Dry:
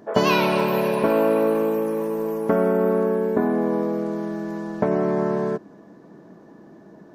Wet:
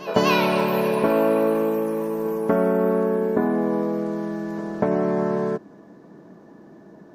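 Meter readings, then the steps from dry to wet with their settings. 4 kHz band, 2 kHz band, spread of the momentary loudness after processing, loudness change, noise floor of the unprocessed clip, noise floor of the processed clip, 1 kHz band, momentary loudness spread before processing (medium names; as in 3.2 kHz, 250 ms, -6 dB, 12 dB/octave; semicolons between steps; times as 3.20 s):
no reading, 0.0 dB, 8 LU, 0.0 dB, -48 dBFS, -47 dBFS, 0.0 dB, 9 LU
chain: pre-echo 242 ms -18 dB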